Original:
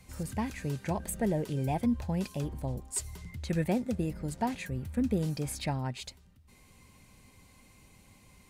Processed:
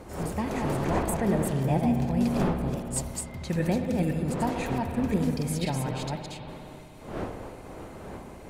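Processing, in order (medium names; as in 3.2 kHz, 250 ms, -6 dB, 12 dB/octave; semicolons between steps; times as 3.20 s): chunks repeated in reverse 257 ms, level -3 dB; wind noise 580 Hz -39 dBFS; spring tank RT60 2.9 s, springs 59 ms, chirp 35 ms, DRR 5.5 dB; trim +1.5 dB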